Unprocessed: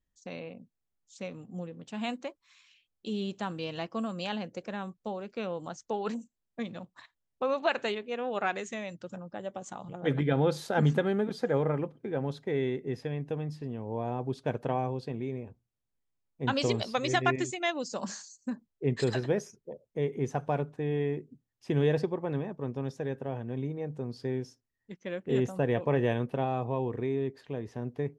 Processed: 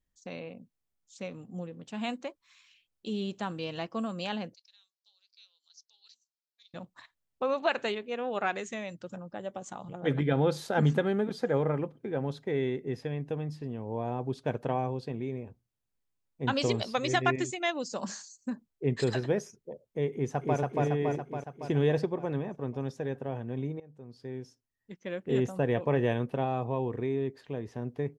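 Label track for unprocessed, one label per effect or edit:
4.540000	6.740000	Butterworth band-pass 4700 Hz, Q 2.7
20.130000	20.590000	echo throw 0.28 s, feedback 65%, level -0.5 dB
23.800000	25.110000	fade in, from -20.5 dB

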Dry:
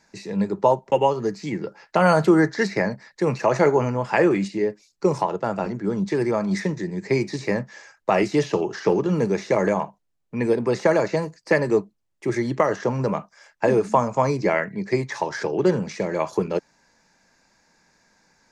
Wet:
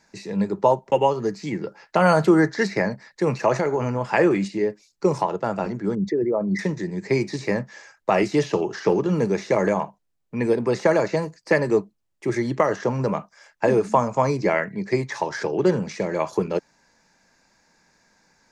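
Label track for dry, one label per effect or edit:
3.570000	4.010000	compressor, threshold -18 dBFS
5.950000	6.590000	formant sharpening exponent 2

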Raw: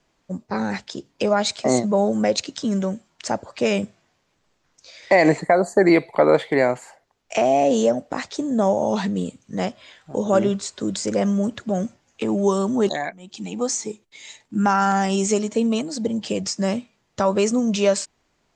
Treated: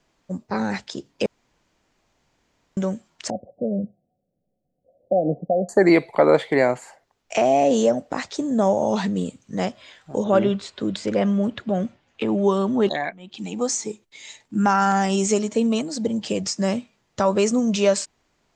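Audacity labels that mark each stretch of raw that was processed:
1.260000	2.770000	room tone
3.300000	5.690000	rippled Chebyshev low-pass 760 Hz, ripple 9 dB
10.240000	13.390000	resonant high shelf 4700 Hz -10 dB, Q 1.5

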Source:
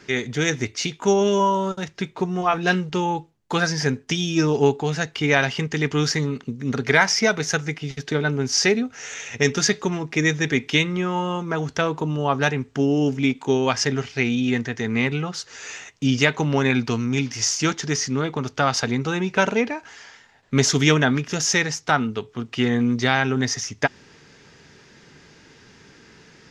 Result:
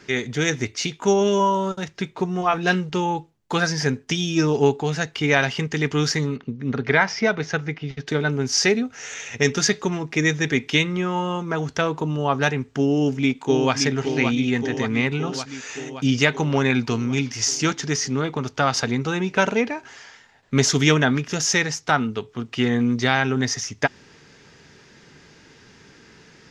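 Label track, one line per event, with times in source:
6.360000	8.070000	air absorption 190 m
12.920000	13.740000	echo throw 0.57 s, feedback 70%, level -6.5 dB

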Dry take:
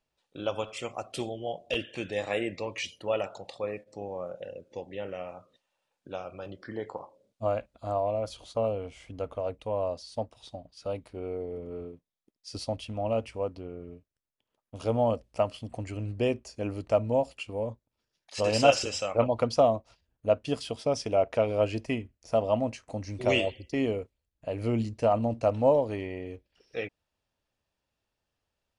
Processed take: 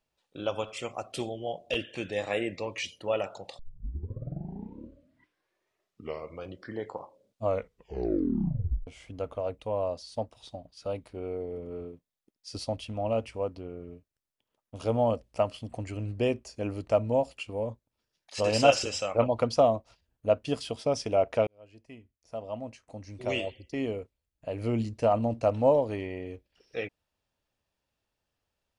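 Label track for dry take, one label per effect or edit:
3.590000	3.590000	tape start 3.05 s
7.440000	7.440000	tape stop 1.43 s
21.470000	25.030000	fade in

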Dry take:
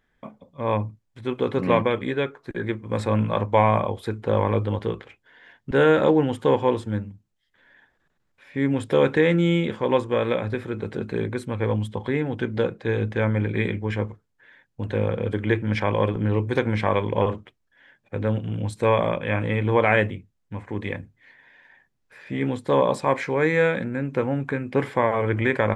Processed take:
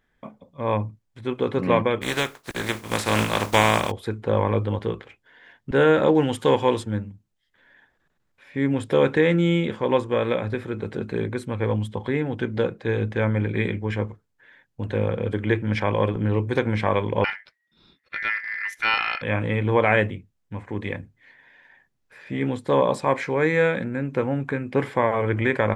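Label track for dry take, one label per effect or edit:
2.010000	3.900000	spectral contrast lowered exponent 0.43
6.150000	6.830000	high shelf 2300 Hz +10 dB
17.240000	19.220000	ring modulator 1900 Hz

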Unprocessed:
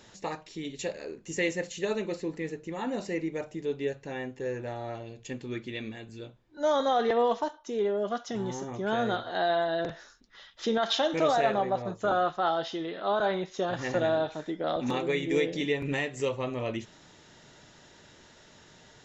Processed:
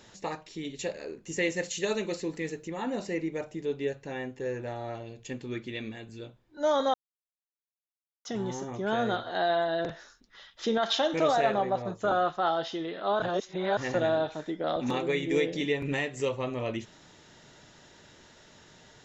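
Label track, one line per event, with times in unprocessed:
1.560000	2.680000	high shelf 3100 Hz +8.5 dB
6.940000	8.250000	mute
13.220000	13.770000	reverse

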